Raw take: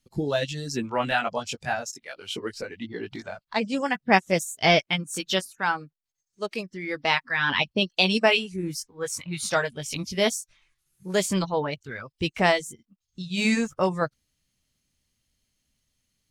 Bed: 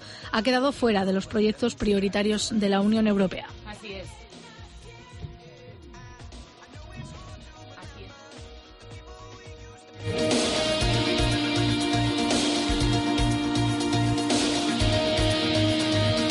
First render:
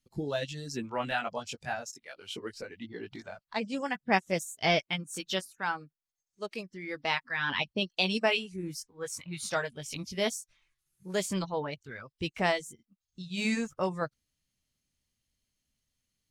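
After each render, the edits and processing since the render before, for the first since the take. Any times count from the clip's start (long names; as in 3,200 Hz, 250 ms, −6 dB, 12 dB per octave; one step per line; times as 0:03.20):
level −7 dB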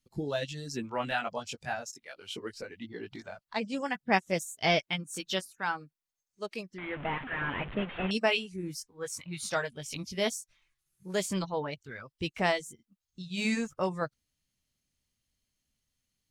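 0:06.78–0:08.11: linear delta modulator 16 kbit/s, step −35 dBFS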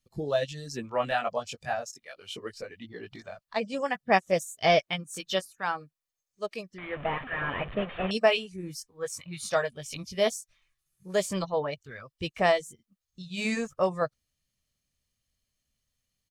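dynamic equaliser 650 Hz, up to +5 dB, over −39 dBFS, Q 0.72
comb filter 1.7 ms, depth 31%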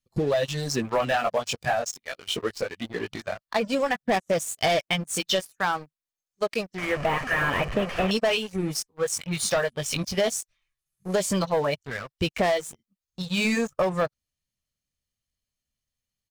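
leveller curve on the samples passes 3
downward compressor, threshold −21 dBFS, peak gain reduction 8.5 dB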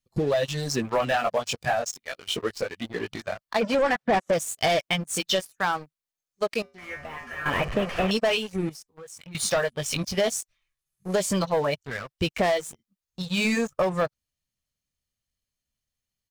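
0:03.61–0:04.33: mid-hump overdrive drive 21 dB, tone 1,500 Hz, clips at −14.5 dBFS
0:06.62–0:07.46: tuned comb filter 80 Hz, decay 0.35 s, harmonics odd, mix 90%
0:08.69–0:09.35: downward compressor, threshold −41 dBFS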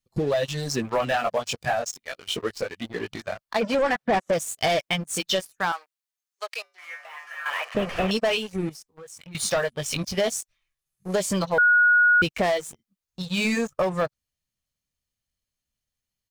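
0:05.72–0:07.75: Bessel high-pass filter 1,000 Hz, order 4
0:11.58–0:12.22: beep over 1,450 Hz −14 dBFS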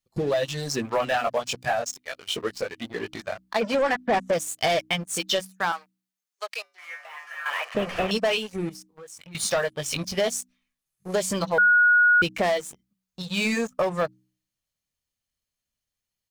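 low-shelf EQ 150 Hz −4.5 dB
hum removal 62.65 Hz, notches 5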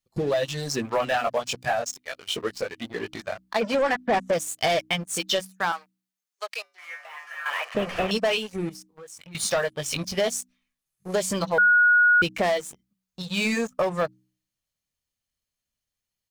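no processing that can be heard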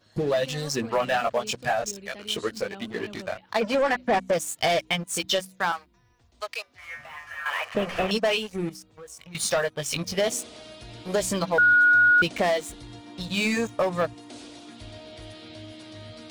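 mix in bed −19.5 dB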